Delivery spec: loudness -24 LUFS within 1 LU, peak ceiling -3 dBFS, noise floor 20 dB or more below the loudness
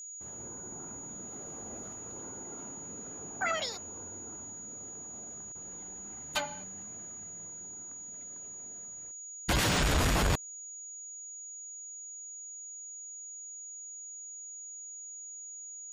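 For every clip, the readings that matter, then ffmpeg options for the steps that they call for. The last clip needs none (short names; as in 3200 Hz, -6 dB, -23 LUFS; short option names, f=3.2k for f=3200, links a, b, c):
steady tone 6800 Hz; tone level -42 dBFS; loudness -37.0 LUFS; peak -18.0 dBFS; loudness target -24.0 LUFS
-> -af "bandreject=f=6.8k:w=30"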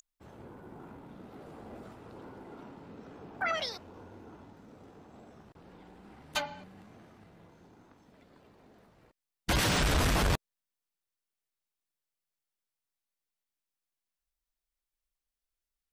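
steady tone none; loudness -30.5 LUFS; peak -18.5 dBFS; loudness target -24.0 LUFS
-> -af "volume=6.5dB"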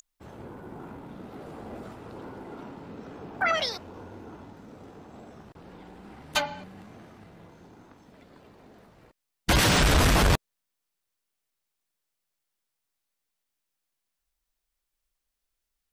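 loudness -24.0 LUFS; peak -12.0 dBFS; noise floor -83 dBFS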